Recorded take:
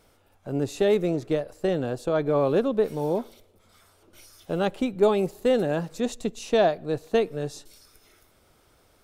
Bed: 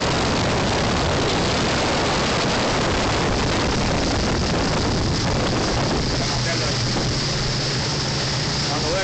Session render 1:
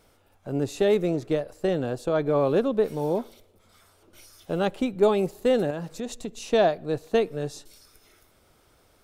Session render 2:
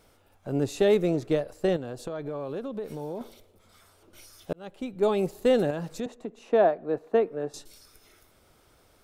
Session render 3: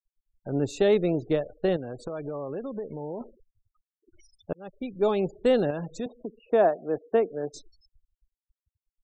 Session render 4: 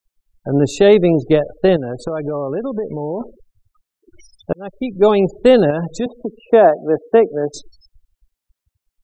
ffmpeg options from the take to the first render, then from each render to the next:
-filter_complex "[0:a]asettb=1/sr,asplit=3[s0][s1][s2];[s0]atrim=end=5.704[s3];[s1]atrim=start=5.7:end=6.49,asetpts=PTS-STARTPTS,afade=t=in:d=0.004:c=qsin,afade=t=out:st=0.786:d=0.004:c=qsin,acompressor=threshold=0.0355:ratio=3:attack=3.2:release=140:knee=1:detection=peak[s4];[s2]atrim=start=6.486[s5];[s3][s4]acrossfade=d=0.004:c1=hsin:c2=qsin[s6];[s6][s5]acrossfade=d=0.004:c1=qsin:c2=hsin"
-filter_complex "[0:a]asettb=1/sr,asplit=3[s0][s1][s2];[s0]atrim=end=1.764[s3];[s1]atrim=start=1.76:end=3.21,asetpts=PTS-STARTPTS,afade=t=in:d=0.004:c=qsin,afade=t=out:st=1.446:d=0.004:c=qsin,acompressor=threshold=0.0251:ratio=4:attack=3.2:release=140:knee=1:detection=peak[s4];[s2]atrim=start=3.206[s5];[s3][s4]acrossfade=d=0.004:c1=hsin:c2=qsin[s6];[s6][s5]acrossfade=d=0.004:c1=qsin:c2=hsin,asettb=1/sr,asplit=3[s7][s8][s9];[s7]atrim=end=6.064[s10];[s8]atrim=start=6.06:end=7.54,asetpts=PTS-STARTPTS,afade=t=in:d=0.004:c=qsin,afade=t=out:st=1.476:d=0.004:c=qsin,acrossover=split=200 2000:gain=0.126 1 0.112[s11][s12][s13];[s11][s12][s13]amix=inputs=3:normalize=0[s14];[s9]atrim=start=7.536[s15];[s10][s14]acrossfade=d=0.004:c1=hsin:c2=qsin[s16];[s16][s15]acrossfade=d=0.004:c1=qsin:c2=hsin,asplit=2[s17][s18];[s17]atrim=end=4.53,asetpts=PTS-STARTPTS,afade=t=out:st=4.526:d=0.004:c=hsin[s19];[s18]atrim=start=4.53,asetpts=PTS-STARTPTS,afade=t=in:d=0.83[s20];[s19][s20]concat=n=2:v=0:a=1"
-af "afftfilt=real='re*gte(hypot(re,im),0.00891)':imag='im*gte(hypot(re,im),0.00891)':win_size=1024:overlap=0.75"
-af "volume=3.98,alimiter=limit=0.891:level=0:latency=1"

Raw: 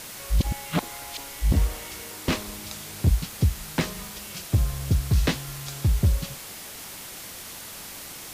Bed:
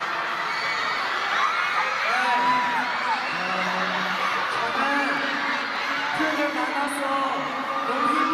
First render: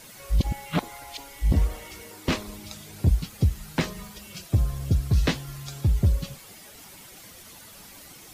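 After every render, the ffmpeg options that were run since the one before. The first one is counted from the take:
-af "afftdn=nr=10:nf=-40"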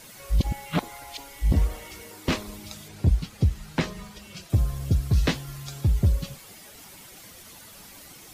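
-filter_complex "[0:a]asettb=1/sr,asplit=3[s0][s1][s2];[s0]atrim=end=2.884[s3];[s1]atrim=start=2.88:end=4.5,asetpts=PTS-STARTPTS,afade=t=in:d=0.004:c=qsin,afade=t=out:st=1.616:d=0.004:c=qsin,highshelf=f=10000:g=-12[s4];[s2]atrim=start=4.496[s5];[s3][s4]acrossfade=d=0.004:c1=hsin:c2=qsin[s6];[s6][s5]acrossfade=d=0.004:c1=qsin:c2=hsin"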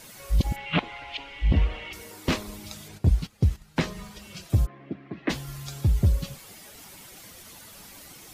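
-filter_complex "[0:a]asettb=1/sr,asplit=3[s0][s1][s2];[s0]atrim=end=0.564[s3];[s1]atrim=start=0.56:end=1.93,asetpts=PTS-STARTPTS,afade=t=in:d=0.004:c=qsin,afade=t=out:st=1.366:d=0.004:c=qsin,lowpass=f=2800:t=q:w=3.2[s4];[s2]atrim=start=1.926[s5];[s3][s4]acrossfade=d=0.004:c1=hsin:c2=qsin[s6];[s6][s5]acrossfade=d=0.004:c1=qsin:c2=hsin,asplit=3[s7][s8][s9];[s7]afade=t=out:st=2.97:d=0.02[s10];[s8]agate=range=0.251:threshold=0.0158:ratio=16:release=100:detection=peak,afade=t=in:st=2.97:d=0.02,afade=t=out:st=3.76:d=0.02[s11];[s9]afade=t=in:st=3.76:d=0.02[s12];[s10][s11][s12]amix=inputs=3:normalize=0,asplit=3[s13][s14][s15];[s13]afade=t=out:st=4.65:d=0.02[s16];[s14]highpass=f=230:w=0.5412,highpass=f=230:w=1.3066,equalizer=f=320:t=q:w=4:g=5,equalizer=f=480:t=q:w=4:g=-9,equalizer=f=890:t=q:w=4:g=-5,equalizer=f=1400:t=q:w=4:g=-7,equalizer=f=2000:t=q:w=4:g=3,lowpass=f=2200:w=0.5412,lowpass=f=2200:w=1.3066,afade=t=in:st=4.65:d=0.02,afade=t=out:st=5.29:d=0.02[s17];[s15]afade=t=in:st=5.29:d=0.02[s18];[s16][s17][s18]amix=inputs=3:normalize=0"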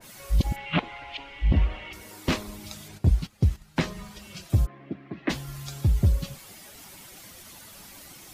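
-af "bandreject=f=460:w=12,adynamicequalizer=threshold=0.00631:dfrequency=2300:dqfactor=0.7:tfrequency=2300:tqfactor=0.7:attack=5:release=100:ratio=0.375:range=2:mode=cutabove:tftype=highshelf"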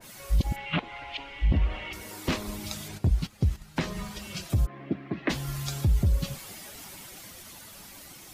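-af "dynaudnorm=f=290:g=13:m=1.78,alimiter=limit=0.158:level=0:latency=1:release=179"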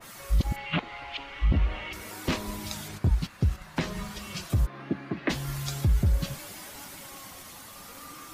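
-filter_complex "[1:a]volume=0.0531[s0];[0:a][s0]amix=inputs=2:normalize=0"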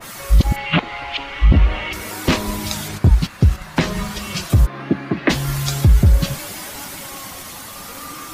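-af "volume=3.76"

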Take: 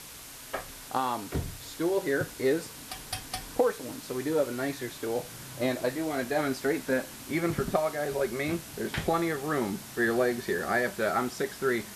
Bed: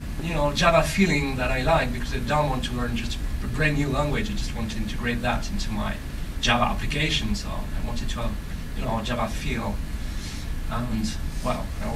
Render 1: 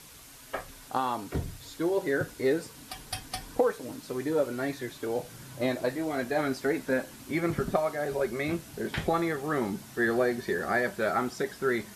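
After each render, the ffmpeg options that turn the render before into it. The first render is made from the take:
-af "afftdn=nr=6:nf=-45"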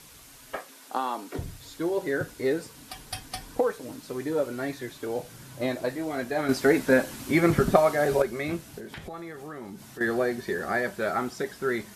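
-filter_complex "[0:a]asettb=1/sr,asplit=3[s0][s1][s2];[s0]atrim=end=0.564[s3];[s1]atrim=start=0.56:end=1.39,asetpts=PTS-STARTPTS,afade=t=in:d=0.004:c=qsin,afade=t=out:st=0.826:d=0.004:c=qsin,highpass=f=230:w=0.5412,highpass=f=230:w=1.3066[s4];[s2]atrim=start=1.386[s5];[s3][s4]acrossfade=d=0.004:c1=hsin:c2=qsin[s6];[s6][s5]acrossfade=d=0.004:c1=qsin:c2=hsin,asettb=1/sr,asplit=3[s7][s8][s9];[s7]atrim=end=8.784[s10];[s8]atrim=start=8.78:end=10.01,asetpts=PTS-STARTPTS,afade=t=in:d=0.004:c=qsin,afade=t=out:st=1.226:d=0.004:c=qsin,acompressor=threshold=0.0112:ratio=3:attack=3.2:release=140:knee=1:detection=peak[s11];[s9]atrim=start=10.006[s12];[s10][s11]acrossfade=d=0.004:c1=hsin:c2=qsin[s13];[s13][s12]acrossfade=d=0.004:c1=qsin:c2=hsin,asplit=3[s14][s15][s16];[s14]atrim=end=6.492[s17];[s15]atrim=start=6.488:end=8.222,asetpts=PTS-STARTPTS,volume=2.37[s18];[s16]atrim=start=8.218[s19];[s17][s18]acrossfade=d=0.004:c1=hsin:c2=hsin[s20];[s20][s19]acrossfade=d=0.004:c1=hsin:c2=hsin"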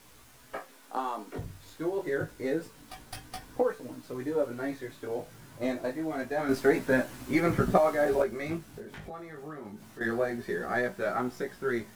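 -filter_complex "[0:a]flanger=delay=16:depth=3.8:speed=0.27,acrossover=split=560|2300[s0][s1][s2];[s2]aeval=exprs='max(val(0),0)':c=same[s3];[s0][s1][s3]amix=inputs=3:normalize=0"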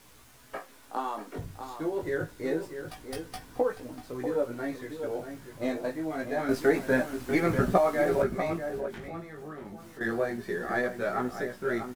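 -filter_complex "[0:a]asplit=2[s0][s1];[s1]adelay=641.4,volume=0.398,highshelf=f=4000:g=-14.4[s2];[s0][s2]amix=inputs=2:normalize=0"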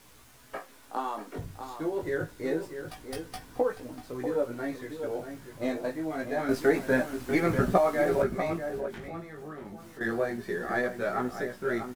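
-af anull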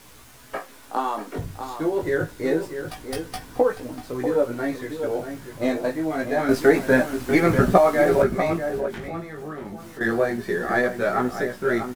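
-af "volume=2.37"

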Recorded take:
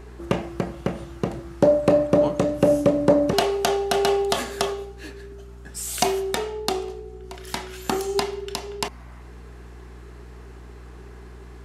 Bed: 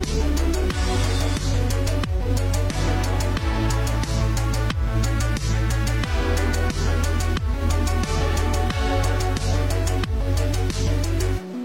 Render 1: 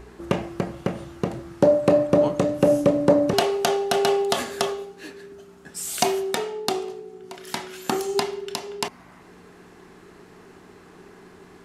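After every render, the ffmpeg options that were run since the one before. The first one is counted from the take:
-af "bandreject=f=60:t=h:w=4,bandreject=f=120:t=h:w=4"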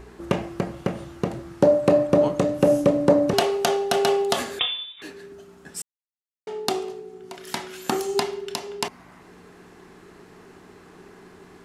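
-filter_complex "[0:a]asettb=1/sr,asplit=3[s0][s1][s2];[s0]atrim=end=4.594[s3];[s1]atrim=start=4.59:end=5.02,asetpts=PTS-STARTPTS,afade=t=in:d=0.004:c=qsin,afade=t=out:st=0.426:d=0.004:c=qsin,lowpass=f=3300:t=q:w=0.5098,lowpass=f=3300:t=q:w=0.6013,lowpass=f=3300:t=q:w=0.9,lowpass=f=3300:t=q:w=2.563,afreqshift=-3900[s4];[s2]atrim=start=5.016[s5];[s3][s4]acrossfade=d=0.004:c1=hsin:c2=qsin[s6];[s6][s5]acrossfade=d=0.004:c1=qsin:c2=hsin,asplit=3[s7][s8][s9];[s7]atrim=end=5.82,asetpts=PTS-STARTPTS,afade=t=out:st=5.816:d=0.004:c=hsin[s10];[s8]atrim=start=5.82:end=6.47,asetpts=PTS-STARTPTS,volume=0[s11];[s9]atrim=start=6.47,asetpts=PTS-STARTPTS,afade=t=in:d=0.004:c=hsin[s12];[s10][s11][s12]concat=n=3:v=0:a=1"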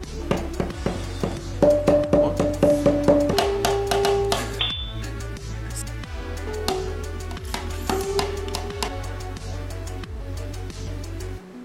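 -filter_complex "[1:a]volume=0.316[s0];[0:a][s0]amix=inputs=2:normalize=0"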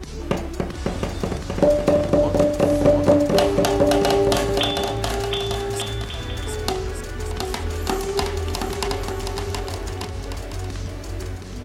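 -af "aecho=1:1:720|1188|1492|1690|1818:0.631|0.398|0.251|0.158|0.1"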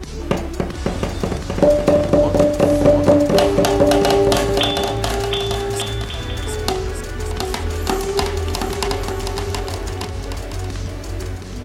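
-af "volume=1.5,alimiter=limit=0.891:level=0:latency=1"

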